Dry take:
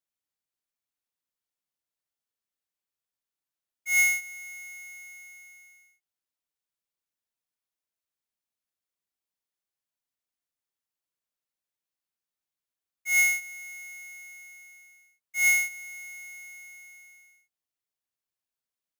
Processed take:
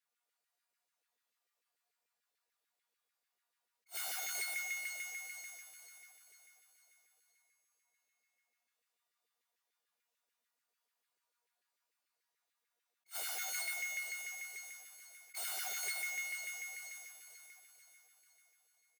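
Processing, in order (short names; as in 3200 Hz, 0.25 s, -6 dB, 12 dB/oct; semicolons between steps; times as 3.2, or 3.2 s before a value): high shelf 5200 Hz -4 dB; notch 3200 Hz, Q 25; in parallel at 0 dB: compressor 10:1, threshold -38 dBFS, peak gain reduction 17 dB; on the sum: tube stage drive 27 dB, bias 0.35; resonator 240 Hz, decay 0.85 s, mix 90%; loudspeakers at several distances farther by 50 m -9 dB, 79 m -7 dB; wrapped overs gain 50.5 dB; on a send: feedback echo 0.48 s, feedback 51%, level -9 dB; on the sum: LFO high-pass saw down 6.8 Hz 360–2100 Hz; attack slew limiter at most 400 dB/s; gain +14 dB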